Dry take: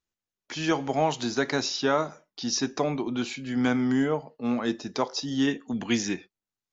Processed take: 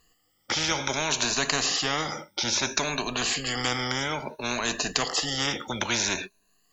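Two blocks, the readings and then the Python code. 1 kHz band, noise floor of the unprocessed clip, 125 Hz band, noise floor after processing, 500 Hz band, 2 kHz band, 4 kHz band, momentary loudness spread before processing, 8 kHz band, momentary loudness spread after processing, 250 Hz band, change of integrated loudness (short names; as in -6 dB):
+0.5 dB, under -85 dBFS, -1.5 dB, -69 dBFS, -4.5 dB, +5.0 dB, +7.5 dB, 7 LU, n/a, 6 LU, -8.5 dB, +1.5 dB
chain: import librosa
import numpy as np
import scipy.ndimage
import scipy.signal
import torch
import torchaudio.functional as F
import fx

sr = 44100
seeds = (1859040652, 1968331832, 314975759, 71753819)

y = fx.spec_ripple(x, sr, per_octave=1.5, drift_hz=0.6, depth_db=21)
y = fx.spectral_comp(y, sr, ratio=4.0)
y = y * 10.0 ** (4.0 / 20.0)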